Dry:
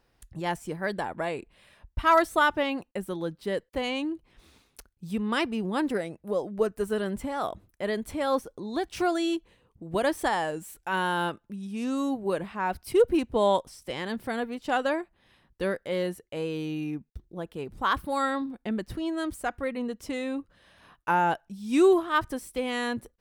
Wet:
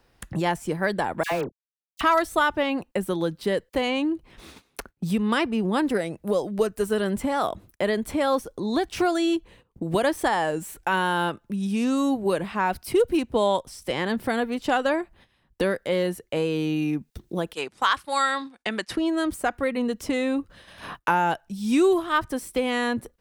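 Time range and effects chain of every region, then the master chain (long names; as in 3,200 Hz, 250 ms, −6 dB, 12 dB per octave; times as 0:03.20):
0:01.23–0:02.01: high-frequency loss of the air 76 metres + centre clipping without the shift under −37 dBFS + all-pass dispersion lows, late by 84 ms, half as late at 1,300 Hz
0:17.53–0:18.97: meter weighting curve ITU-R 468 + noise gate −46 dBFS, range −10 dB
whole clip: noise gate −57 dBFS, range −19 dB; multiband upward and downward compressor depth 70%; level +4 dB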